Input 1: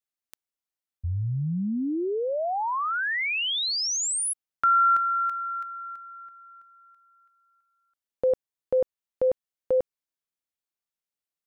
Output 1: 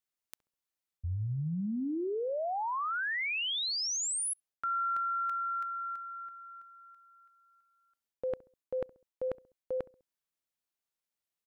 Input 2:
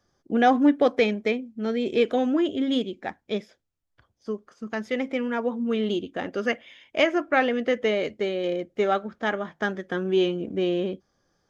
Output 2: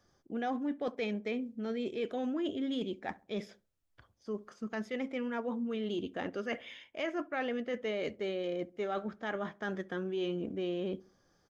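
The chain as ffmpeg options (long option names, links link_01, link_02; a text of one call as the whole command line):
ffmpeg -i in.wav -filter_complex "[0:a]areverse,acompressor=threshold=-32dB:ratio=6:attack=5.8:release=159:knee=6:detection=rms,areverse,asplit=2[link_01][link_02];[link_02]adelay=67,lowpass=frequency=960:poles=1,volume=-20dB,asplit=2[link_03][link_04];[link_04]adelay=67,lowpass=frequency=960:poles=1,volume=0.43,asplit=2[link_05][link_06];[link_06]adelay=67,lowpass=frequency=960:poles=1,volume=0.43[link_07];[link_01][link_03][link_05][link_07]amix=inputs=4:normalize=0" out.wav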